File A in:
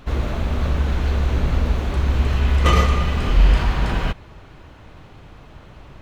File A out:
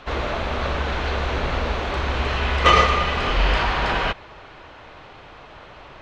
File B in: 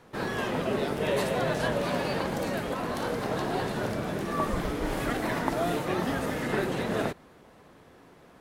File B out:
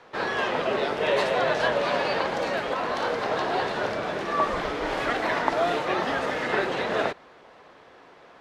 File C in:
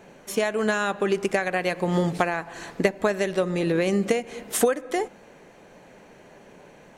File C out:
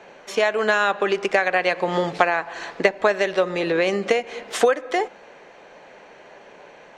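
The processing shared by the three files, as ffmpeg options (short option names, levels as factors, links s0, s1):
-filter_complex "[0:a]acrossover=split=410 5900:gain=0.2 1 0.0708[s0][s1][s2];[s0][s1][s2]amix=inputs=3:normalize=0,volume=2.11"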